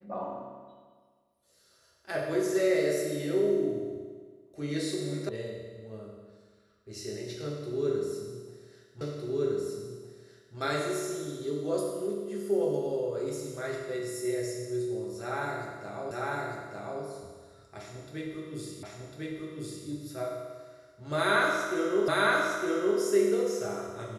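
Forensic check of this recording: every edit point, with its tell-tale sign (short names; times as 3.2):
5.29 sound cut off
9.01 repeat of the last 1.56 s
16.11 repeat of the last 0.9 s
18.83 repeat of the last 1.05 s
22.08 repeat of the last 0.91 s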